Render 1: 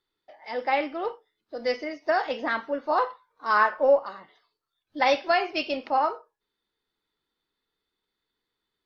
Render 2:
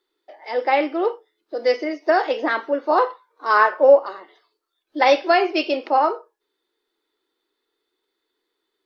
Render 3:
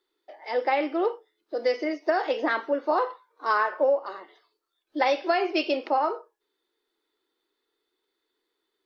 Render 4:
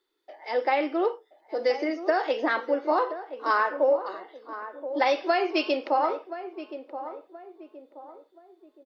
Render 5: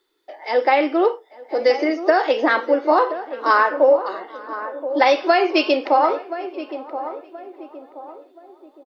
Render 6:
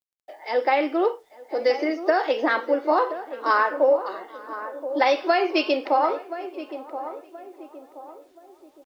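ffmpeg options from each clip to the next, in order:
-af "lowshelf=f=230:t=q:w=3:g=-14,volume=4.5dB"
-af "acompressor=threshold=-17dB:ratio=6,volume=-2.5dB"
-filter_complex "[0:a]asplit=2[a][b];[b]adelay=1026,lowpass=f=980:p=1,volume=-10.5dB,asplit=2[c][d];[d]adelay=1026,lowpass=f=980:p=1,volume=0.43,asplit=2[e][f];[f]adelay=1026,lowpass=f=980:p=1,volume=0.43,asplit=2[g][h];[h]adelay=1026,lowpass=f=980:p=1,volume=0.43,asplit=2[i][j];[j]adelay=1026,lowpass=f=980:p=1,volume=0.43[k];[a][c][e][g][i][k]amix=inputs=6:normalize=0"
-filter_complex "[0:a]asplit=2[a][b];[b]adelay=840,lowpass=f=2.2k:p=1,volume=-22dB,asplit=2[c][d];[d]adelay=840,lowpass=f=2.2k:p=1,volume=0.4,asplit=2[e][f];[f]adelay=840,lowpass=f=2.2k:p=1,volume=0.4[g];[a][c][e][g]amix=inputs=4:normalize=0,volume=8dB"
-af "acrusher=bits=9:mix=0:aa=0.000001,volume=-4.5dB"

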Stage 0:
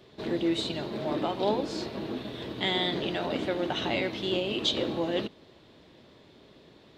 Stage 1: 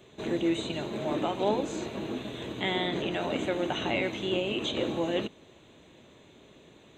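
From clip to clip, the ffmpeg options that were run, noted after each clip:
-filter_complex "[0:a]acrossover=split=3000[a][b];[b]acompressor=threshold=-43dB:ratio=4:attack=1:release=60[c];[a][c]amix=inputs=2:normalize=0,superequalizer=12b=1.41:14b=0.282:15b=2.82"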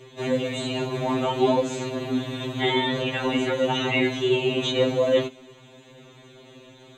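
-af "afftfilt=real='re*2.45*eq(mod(b,6),0)':imag='im*2.45*eq(mod(b,6),0)':win_size=2048:overlap=0.75,volume=9dB"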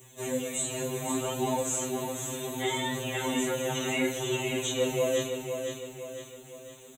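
-af "flanger=delay=16.5:depth=5.2:speed=0.68,aecho=1:1:507|1014|1521|2028|2535:0.473|0.218|0.1|0.0461|0.0212,aexciter=amount=10.5:drive=8.4:freq=6.9k,volume=-4.5dB"

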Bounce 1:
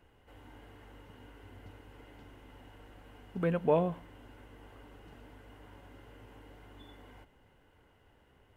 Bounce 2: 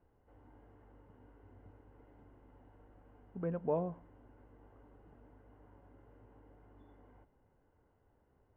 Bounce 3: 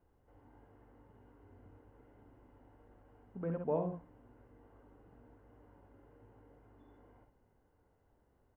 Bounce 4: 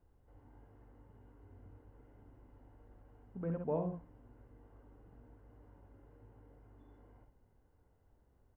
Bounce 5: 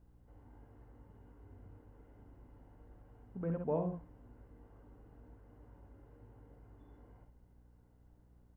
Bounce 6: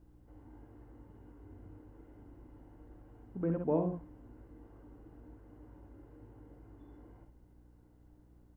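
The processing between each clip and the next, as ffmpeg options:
-af "lowpass=1.1k,volume=-6.5dB"
-af "aecho=1:1:49|66:0.282|0.473,volume=-1.5dB"
-af "lowshelf=f=130:g=9,volume=-2.5dB"
-af "aeval=exprs='val(0)+0.000562*(sin(2*PI*60*n/s)+sin(2*PI*2*60*n/s)/2+sin(2*PI*3*60*n/s)/3+sin(2*PI*4*60*n/s)/4+sin(2*PI*5*60*n/s)/5)':c=same,volume=1dB"
-af "equalizer=f=320:t=o:w=0.28:g=11,volume=2dB"

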